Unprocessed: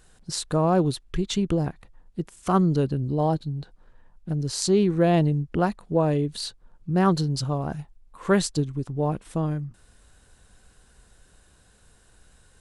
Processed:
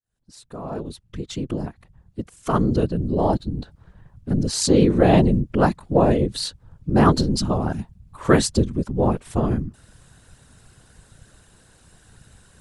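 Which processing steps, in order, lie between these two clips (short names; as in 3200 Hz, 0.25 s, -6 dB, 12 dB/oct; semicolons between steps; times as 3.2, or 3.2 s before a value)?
opening faded in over 4.07 s; whisperiser; gain +5 dB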